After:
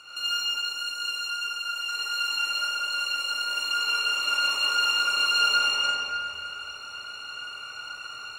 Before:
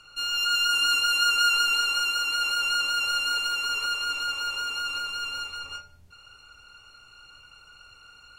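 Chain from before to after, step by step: high-pass 440 Hz 6 dB/octave; compressor with a negative ratio -34 dBFS, ratio -1; algorithmic reverb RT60 2.5 s, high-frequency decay 0.75×, pre-delay 45 ms, DRR -9.5 dB; trim -2.5 dB

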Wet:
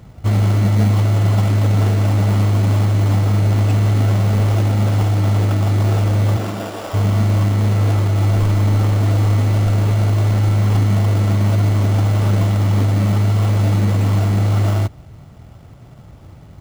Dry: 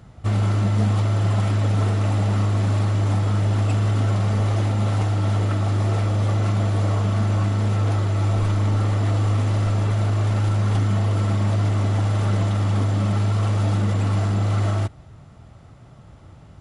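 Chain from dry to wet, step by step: 6.36–6.93 s: high-pass 140 Hz -> 610 Hz 12 dB/octave; in parallel at -1.5 dB: sample-rate reducer 2.1 kHz, jitter 0%

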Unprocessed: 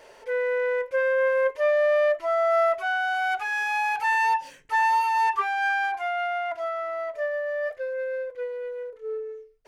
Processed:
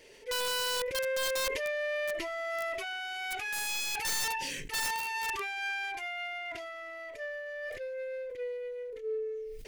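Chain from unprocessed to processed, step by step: high-order bell 940 Hz -14.5 dB; integer overflow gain 26 dB; decay stretcher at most 24 dB/s; trim -1 dB

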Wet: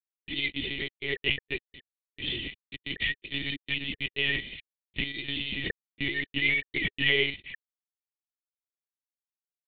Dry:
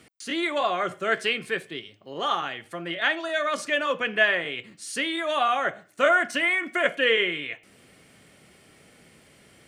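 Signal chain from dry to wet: small samples zeroed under -23.5 dBFS; brick-wall FIR band-stop 440–1800 Hz; monotone LPC vocoder at 8 kHz 140 Hz; 2.27–3.96 s: three bands compressed up and down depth 70%

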